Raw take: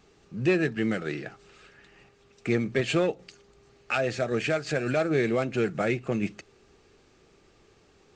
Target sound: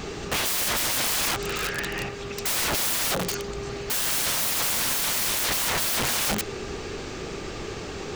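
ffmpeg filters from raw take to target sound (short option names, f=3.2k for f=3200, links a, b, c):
-af "apsyclip=29.5dB,acrusher=bits=10:mix=0:aa=0.000001,aeval=exprs='(mod(6.31*val(0)+1,2)-1)/6.31':c=same,volume=-4dB"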